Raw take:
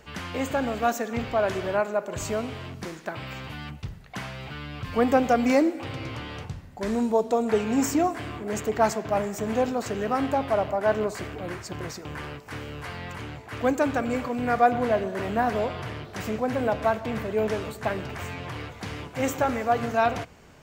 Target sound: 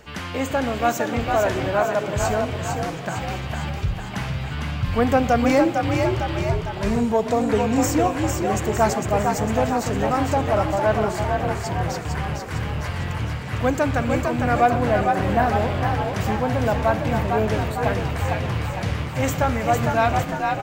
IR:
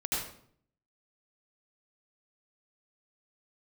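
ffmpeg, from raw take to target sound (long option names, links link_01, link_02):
-filter_complex "[0:a]asplit=9[link_01][link_02][link_03][link_04][link_05][link_06][link_07][link_08][link_09];[link_02]adelay=454,afreqshift=45,volume=-4.5dB[link_10];[link_03]adelay=908,afreqshift=90,volume=-9.5dB[link_11];[link_04]adelay=1362,afreqshift=135,volume=-14.6dB[link_12];[link_05]adelay=1816,afreqshift=180,volume=-19.6dB[link_13];[link_06]adelay=2270,afreqshift=225,volume=-24.6dB[link_14];[link_07]adelay=2724,afreqshift=270,volume=-29.7dB[link_15];[link_08]adelay=3178,afreqshift=315,volume=-34.7dB[link_16];[link_09]adelay=3632,afreqshift=360,volume=-39.8dB[link_17];[link_01][link_10][link_11][link_12][link_13][link_14][link_15][link_16][link_17]amix=inputs=9:normalize=0,asubboost=boost=4.5:cutoff=130,acontrast=80,volume=-3dB"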